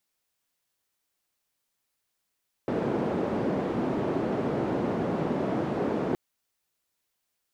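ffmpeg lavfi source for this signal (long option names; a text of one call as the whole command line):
ffmpeg -f lavfi -i "anoisesrc=color=white:duration=3.47:sample_rate=44100:seed=1,highpass=frequency=180,lowpass=frequency=390,volume=-3.7dB" out.wav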